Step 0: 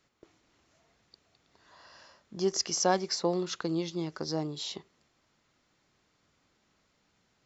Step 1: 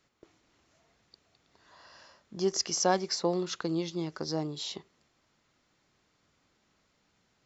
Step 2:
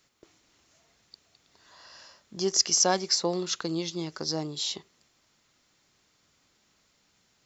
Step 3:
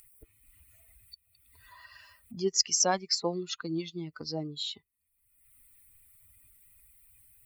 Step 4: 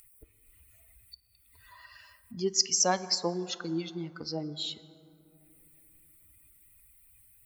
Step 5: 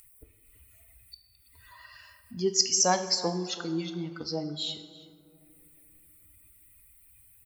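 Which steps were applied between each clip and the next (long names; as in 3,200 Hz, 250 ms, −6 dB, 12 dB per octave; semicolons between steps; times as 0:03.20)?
no processing that can be heard
high-shelf EQ 3,200 Hz +10.5 dB
spectral dynamics exaggerated over time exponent 2; upward compression, threshold −34 dBFS
convolution reverb RT60 3.0 s, pre-delay 8 ms, DRR 13.5 dB
slap from a distant wall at 57 metres, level −17 dB; coupled-rooms reverb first 0.7 s, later 1.9 s, from −27 dB, DRR 8.5 dB; level +1.5 dB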